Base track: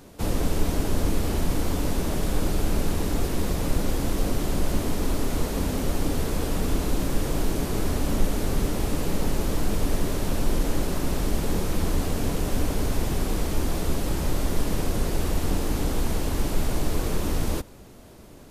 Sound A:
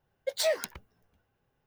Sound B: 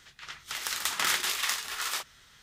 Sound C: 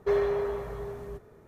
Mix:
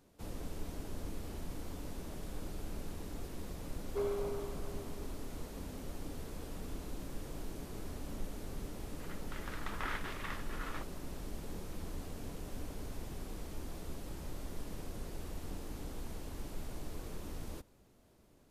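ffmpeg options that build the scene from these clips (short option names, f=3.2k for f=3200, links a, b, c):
-filter_complex "[0:a]volume=-18.5dB[a];[3:a]asuperstop=centerf=1800:order=4:qfactor=4.1[b];[2:a]lowpass=1.6k[c];[b]atrim=end=1.47,asetpts=PTS-STARTPTS,volume=-10.5dB,afade=t=in:d=0.004:c=hsin,afade=t=out:st=1.466:d=0.004:c=hsin,adelay=171549S[d];[c]atrim=end=2.42,asetpts=PTS-STARTPTS,volume=-7dB,afade=t=in:d=0.004:c=hsin,afade=t=out:st=2.416:d=0.004:c=hsin,adelay=8810[e];[a][d][e]amix=inputs=3:normalize=0"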